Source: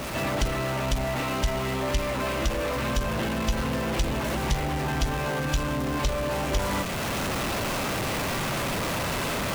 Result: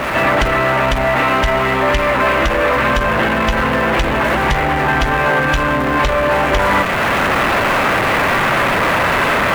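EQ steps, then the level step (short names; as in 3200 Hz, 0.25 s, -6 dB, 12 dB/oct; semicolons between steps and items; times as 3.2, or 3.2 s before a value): EQ curve 150 Hz 0 dB, 1800 Hz +12 dB, 5500 Hz -5 dB; +7.0 dB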